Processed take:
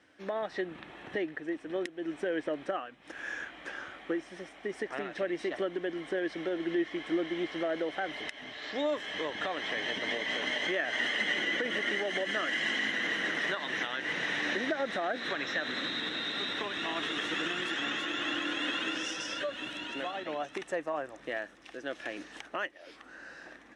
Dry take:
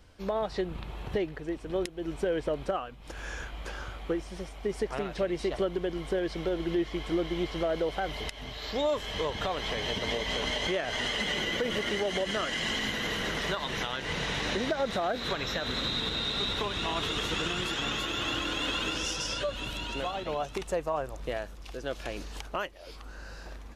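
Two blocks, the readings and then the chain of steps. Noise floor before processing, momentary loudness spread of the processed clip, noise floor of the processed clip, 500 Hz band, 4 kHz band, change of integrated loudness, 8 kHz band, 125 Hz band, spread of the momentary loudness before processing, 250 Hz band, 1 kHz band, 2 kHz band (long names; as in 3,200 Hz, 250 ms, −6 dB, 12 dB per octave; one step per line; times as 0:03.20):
−45 dBFS, 10 LU, −54 dBFS, −3.5 dB, −3.5 dB, −1.5 dB, −7.0 dB, −13.0 dB, 10 LU, −2.0 dB, −3.5 dB, +3.0 dB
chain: loudspeaker in its box 260–8,700 Hz, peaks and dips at 300 Hz +7 dB, 440 Hz −4 dB, 970 Hz −4 dB, 1,800 Hz +10 dB, 4,600 Hz −8 dB, 7,000 Hz −6 dB
level −2.5 dB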